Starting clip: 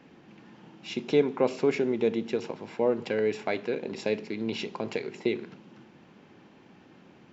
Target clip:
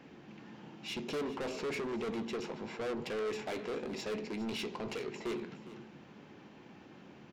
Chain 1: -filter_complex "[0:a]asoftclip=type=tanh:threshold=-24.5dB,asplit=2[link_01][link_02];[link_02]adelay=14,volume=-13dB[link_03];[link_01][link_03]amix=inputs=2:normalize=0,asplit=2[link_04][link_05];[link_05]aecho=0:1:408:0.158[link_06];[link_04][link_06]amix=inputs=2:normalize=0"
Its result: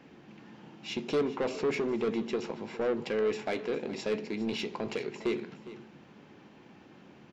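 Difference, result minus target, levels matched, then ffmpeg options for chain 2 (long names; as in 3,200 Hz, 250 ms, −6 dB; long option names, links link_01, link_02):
soft clipping: distortion −6 dB
-filter_complex "[0:a]asoftclip=type=tanh:threshold=-34.5dB,asplit=2[link_01][link_02];[link_02]adelay=14,volume=-13dB[link_03];[link_01][link_03]amix=inputs=2:normalize=0,asplit=2[link_04][link_05];[link_05]aecho=0:1:408:0.158[link_06];[link_04][link_06]amix=inputs=2:normalize=0"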